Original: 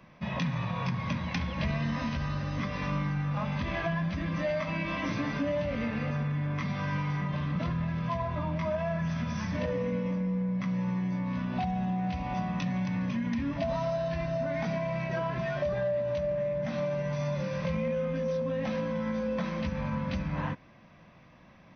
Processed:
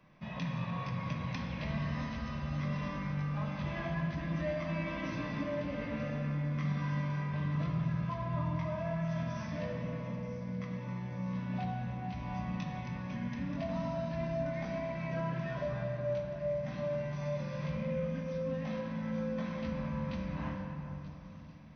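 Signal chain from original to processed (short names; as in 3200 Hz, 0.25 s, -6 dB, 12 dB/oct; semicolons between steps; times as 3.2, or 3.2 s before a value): thin delay 0.931 s, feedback 72%, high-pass 4600 Hz, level -10 dB; shoebox room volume 210 m³, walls hard, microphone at 0.46 m; gain -9 dB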